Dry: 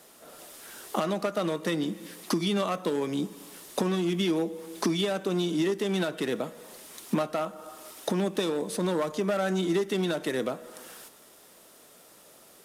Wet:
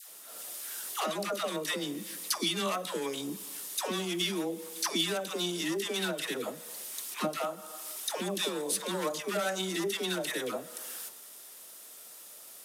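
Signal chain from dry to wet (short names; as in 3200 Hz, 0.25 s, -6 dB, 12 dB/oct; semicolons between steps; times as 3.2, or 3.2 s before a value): tilt +3 dB/oct; dispersion lows, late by 0.11 s, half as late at 690 Hz; gain -2.5 dB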